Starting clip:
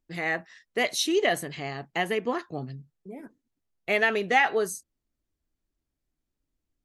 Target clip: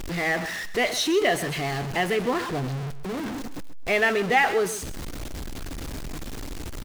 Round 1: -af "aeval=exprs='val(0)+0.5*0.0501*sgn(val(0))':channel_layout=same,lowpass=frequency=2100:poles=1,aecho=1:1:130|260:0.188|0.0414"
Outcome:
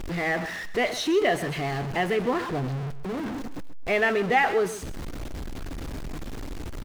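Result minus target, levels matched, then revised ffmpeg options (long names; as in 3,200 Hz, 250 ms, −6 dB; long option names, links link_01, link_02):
8,000 Hz band −5.5 dB
-af "aeval=exprs='val(0)+0.5*0.0501*sgn(val(0))':channel_layout=same,lowpass=frequency=5800:poles=1,aecho=1:1:130|260:0.188|0.0414"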